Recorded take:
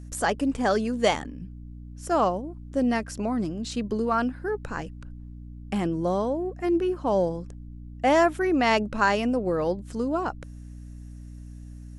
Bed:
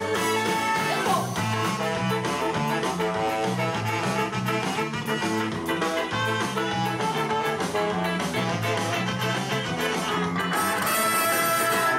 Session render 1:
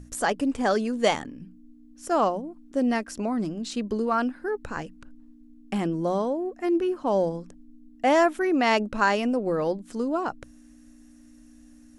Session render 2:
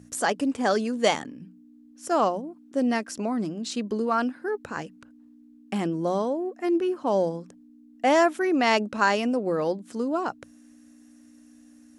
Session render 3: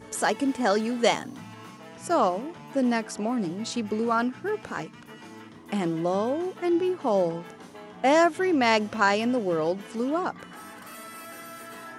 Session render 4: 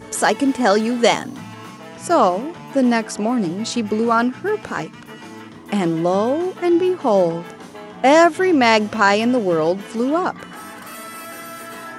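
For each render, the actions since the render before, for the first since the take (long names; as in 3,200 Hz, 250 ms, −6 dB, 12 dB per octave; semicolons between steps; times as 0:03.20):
mains-hum notches 60/120/180 Hz
high-pass filter 130 Hz 12 dB per octave; dynamic equaliser 5,900 Hz, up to +3 dB, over −44 dBFS, Q 0.76
mix in bed −19.5 dB
level +8 dB; brickwall limiter −2 dBFS, peak gain reduction 2.5 dB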